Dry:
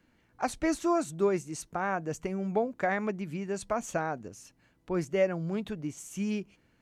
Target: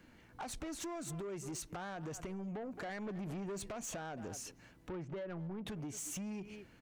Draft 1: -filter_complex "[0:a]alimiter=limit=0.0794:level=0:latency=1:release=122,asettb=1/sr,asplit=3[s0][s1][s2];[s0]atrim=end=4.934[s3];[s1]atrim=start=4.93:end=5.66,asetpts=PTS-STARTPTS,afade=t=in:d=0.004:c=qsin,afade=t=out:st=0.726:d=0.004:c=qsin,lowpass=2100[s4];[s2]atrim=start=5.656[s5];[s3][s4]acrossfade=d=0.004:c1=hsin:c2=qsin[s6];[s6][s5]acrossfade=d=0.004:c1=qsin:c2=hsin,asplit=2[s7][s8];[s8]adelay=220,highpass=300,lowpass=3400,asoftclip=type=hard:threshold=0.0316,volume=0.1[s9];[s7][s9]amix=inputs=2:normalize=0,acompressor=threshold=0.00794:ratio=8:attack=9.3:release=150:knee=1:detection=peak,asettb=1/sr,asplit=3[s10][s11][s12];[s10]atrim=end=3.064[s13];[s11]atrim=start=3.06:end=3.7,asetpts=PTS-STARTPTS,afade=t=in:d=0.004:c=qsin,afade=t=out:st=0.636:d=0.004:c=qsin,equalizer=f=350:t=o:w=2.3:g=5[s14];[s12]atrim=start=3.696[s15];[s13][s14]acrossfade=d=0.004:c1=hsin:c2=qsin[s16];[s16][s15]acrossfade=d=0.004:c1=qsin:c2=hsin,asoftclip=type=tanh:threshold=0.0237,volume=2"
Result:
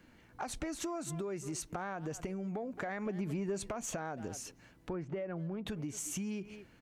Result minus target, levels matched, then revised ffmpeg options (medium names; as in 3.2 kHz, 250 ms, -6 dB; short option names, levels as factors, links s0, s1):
saturation: distortion -14 dB
-filter_complex "[0:a]alimiter=limit=0.0794:level=0:latency=1:release=122,asettb=1/sr,asplit=3[s0][s1][s2];[s0]atrim=end=4.934[s3];[s1]atrim=start=4.93:end=5.66,asetpts=PTS-STARTPTS,afade=t=in:d=0.004:c=qsin,afade=t=out:st=0.726:d=0.004:c=qsin,lowpass=2100[s4];[s2]atrim=start=5.656[s5];[s3][s4]acrossfade=d=0.004:c1=hsin:c2=qsin[s6];[s6][s5]acrossfade=d=0.004:c1=qsin:c2=hsin,asplit=2[s7][s8];[s8]adelay=220,highpass=300,lowpass=3400,asoftclip=type=hard:threshold=0.0316,volume=0.1[s9];[s7][s9]amix=inputs=2:normalize=0,acompressor=threshold=0.00794:ratio=8:attack=9.3:release=150:knee=1:detection=peak,asettb=1/sr,asplit=3[s10][s11][s12];[s10]atrim=end=3.064[s13];[s11]atrim=start=3.06:end=3.7,asetpts=PTS-STARTPTS,afade=t=in:d=0.004:c=qsin,afade=t=out:st=0.636:d=0.004:c=qsin,equalizer=f=350:t=o:w=2.3:g=5[s14];[s12]atrim=start=3.696[s15];[s13][s14]acrossfade=d=0.004:c1=hsin:c2=qsin[s16];[s16][s15]acrossfade=d=0.004:c1=qsin:c2=hsin,asoftclip=type=tanh:threshold=0.00596,volume=2"